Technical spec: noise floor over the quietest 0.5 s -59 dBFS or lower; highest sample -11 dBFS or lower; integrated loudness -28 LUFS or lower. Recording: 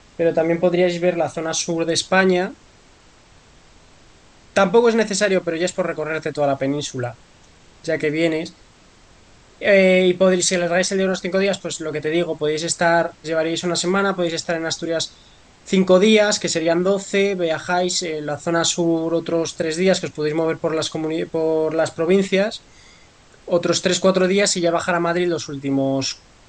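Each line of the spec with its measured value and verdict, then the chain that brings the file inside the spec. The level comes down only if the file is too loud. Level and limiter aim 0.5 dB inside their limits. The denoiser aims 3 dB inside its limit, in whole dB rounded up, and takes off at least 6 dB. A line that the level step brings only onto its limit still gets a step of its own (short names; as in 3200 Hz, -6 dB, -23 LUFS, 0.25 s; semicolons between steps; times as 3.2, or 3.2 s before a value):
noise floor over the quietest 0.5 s -50 dBFS: fail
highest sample -3.0 dBFS: fail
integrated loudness -19.5 LUFS: fail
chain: denoiser 6 dB, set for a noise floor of -50 dBFS; gain -9 dB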